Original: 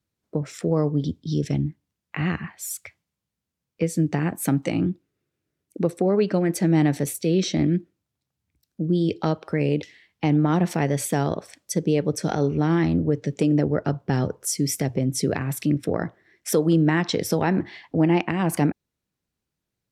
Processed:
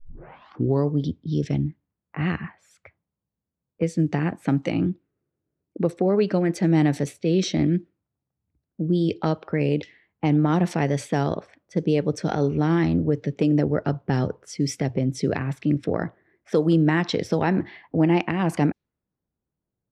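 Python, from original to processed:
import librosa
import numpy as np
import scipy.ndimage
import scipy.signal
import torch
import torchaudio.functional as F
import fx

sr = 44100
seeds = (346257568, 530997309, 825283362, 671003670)

y = fx.tape_start_head(x, sr, length_s=0.87)
y = fx.env_lowpass(y, sr, base_hz=920.0, full_db=-15.5)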